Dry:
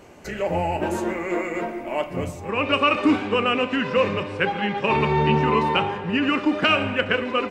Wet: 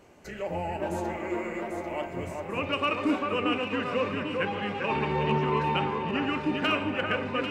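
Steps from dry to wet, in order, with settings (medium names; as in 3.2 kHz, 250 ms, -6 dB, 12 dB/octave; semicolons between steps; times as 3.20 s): hard clipper -8.5 dBFS, distortion -36 dB; on a send: echo whose repeats swap between lows and highs 397 ms, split 2.1 kHz, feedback 69%, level -3.5 dB; on the sum: trim -8.5 dB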